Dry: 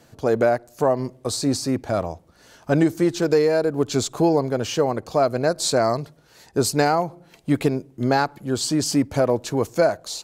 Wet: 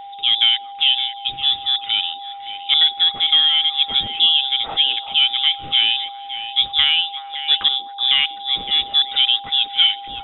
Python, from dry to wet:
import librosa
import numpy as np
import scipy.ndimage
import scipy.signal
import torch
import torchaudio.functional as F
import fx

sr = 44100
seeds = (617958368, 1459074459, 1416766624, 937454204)

y = x + 10.0 ** (-35.0 / 20.0) * np.sin(2.0 * np.pi * 2900.0 * np.arange(len(x)) / sr)
y = fx.freq_invert(y, sr, carrier_hz=3700)
y = fx.echo_stepped(y, sr, ms=188, hz=330.0, octaves=1.4, feedback_pct=70, wet_db=-4.5)
y = y * librosa.db_to_amplitude(2.5)